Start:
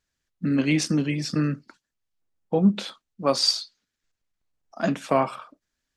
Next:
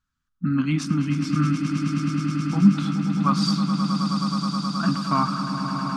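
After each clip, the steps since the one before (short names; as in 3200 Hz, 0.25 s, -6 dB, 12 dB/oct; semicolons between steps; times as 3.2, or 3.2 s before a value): EQ curve 250 Hz 0 dB, 490 Hz -26 dB, 1300 Hz +7 dB, 1800 Hz -11 dB, 3400 Hz -8 dB, 5100 Hz -11 dB; on a send: swelling echo 0.106 s, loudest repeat 8, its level -10 dB; on the sum: gain +3.5 dB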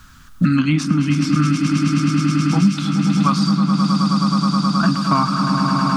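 three-band squash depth 100%; gain +5.5 dB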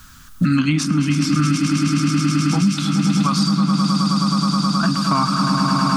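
high shelf 5400 Hz +9 dB; limiter -8.5 dBFS, peak gain reduction 4.5 dB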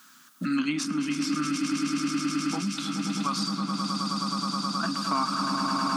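HPF 230 Hz 24 dB/oct; gain -7.5 dB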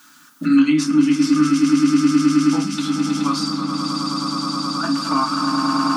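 FDN reverb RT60 0.3 s, low-frequency decay 1.4×, high-frequency decay 0.6×, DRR 0 dB; gain +3 dB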